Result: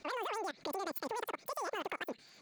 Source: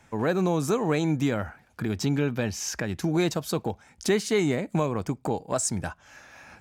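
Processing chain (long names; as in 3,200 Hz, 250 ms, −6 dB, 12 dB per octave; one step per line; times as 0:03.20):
adaptive Wiener filter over 9 samples
downward compressor 3 to 1, threshold −40 dBFS, peak gain reduction 15.5 dB
brickwall limiter −31.5 dBFS, peak gain reduction 6.5 dB
change of speed 2.74×
on a send: delay with a high-pass on its return 806 ms, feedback 63%, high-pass 1,500 Hz, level −19.5 dB
on the sum: output level in coarse steps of 22 dB
level +6 dB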